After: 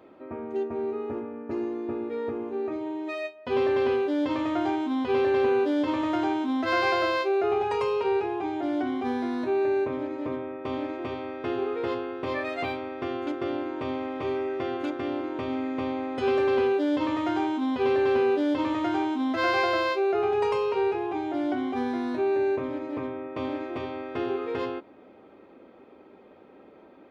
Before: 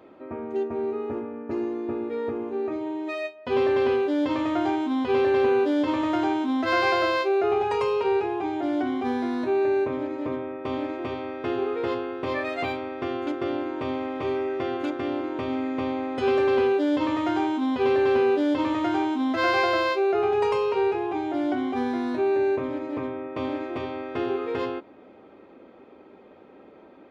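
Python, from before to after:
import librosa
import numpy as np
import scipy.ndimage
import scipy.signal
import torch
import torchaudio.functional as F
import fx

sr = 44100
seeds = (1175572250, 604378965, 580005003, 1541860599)

y = fx.notch(x, sr, hz=7100.0, q=30.0)
y = F.gain(torch.from_numpy(y), -2.0).numpy()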